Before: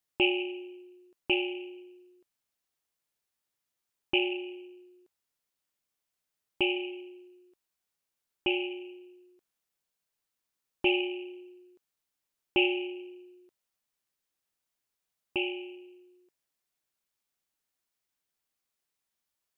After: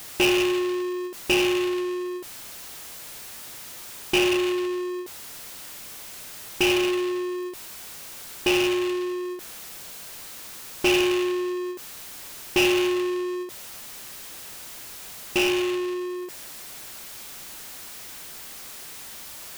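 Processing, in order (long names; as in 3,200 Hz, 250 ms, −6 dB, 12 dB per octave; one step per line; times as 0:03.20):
power curve on the samples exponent 0.35
every ending faded ahead of time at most 120 dB per second
level −1.5 dB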